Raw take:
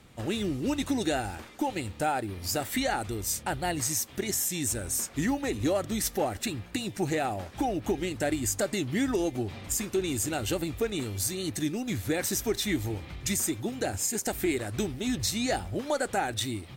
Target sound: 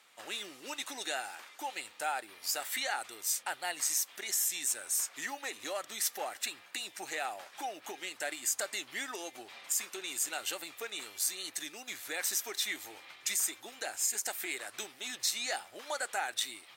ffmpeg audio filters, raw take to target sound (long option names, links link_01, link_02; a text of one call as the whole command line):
ffmpeg -i in.wav -af "highpass=970,volume=-1.5dB" out.wav